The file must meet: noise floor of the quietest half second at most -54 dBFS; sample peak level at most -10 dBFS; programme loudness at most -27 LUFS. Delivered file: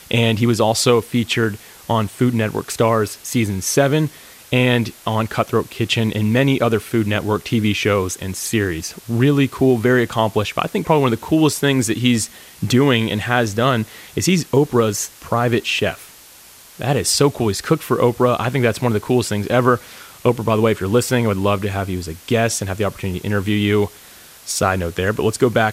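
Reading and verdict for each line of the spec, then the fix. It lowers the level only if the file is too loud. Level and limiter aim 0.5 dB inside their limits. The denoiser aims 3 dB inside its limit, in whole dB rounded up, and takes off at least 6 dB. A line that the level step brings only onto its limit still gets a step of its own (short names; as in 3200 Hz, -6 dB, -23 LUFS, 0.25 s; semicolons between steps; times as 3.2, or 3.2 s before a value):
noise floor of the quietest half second -44 dBFS: fail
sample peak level -2.0 dBFS: fail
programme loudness -18.5 LUFS: fail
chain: denoiser 6 dB, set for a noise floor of -44 dBFS; gain -9 dB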